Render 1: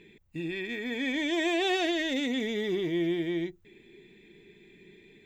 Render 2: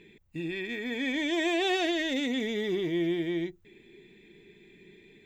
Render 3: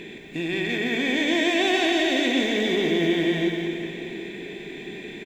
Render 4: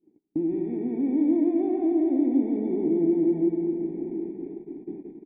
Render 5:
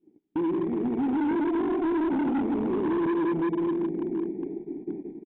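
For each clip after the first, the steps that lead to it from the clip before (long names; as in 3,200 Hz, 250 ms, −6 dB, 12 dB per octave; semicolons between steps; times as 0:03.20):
no processing that can be heard
compressor on every frequency bin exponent 0.6; on a send: single-tap delay 174 ms −5.5 dB; on the sum: dense smooth reverb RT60 3.3 s, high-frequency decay 0.8×, pre-delay 90 ms, DRR 3.5 dB; level +2.5 dB
noise gate −35 dBFS, range −41 dB; in parallel at +3 dB: downward compressor, threshold −30 dBFS, peak gain reduction 12 dB; on the sum: formant resonators in series u; level +2.5 dB
hard clipping −26 dBFS, distortion −8 dB; downsampling to 8,000 Hz; level +2.5 dB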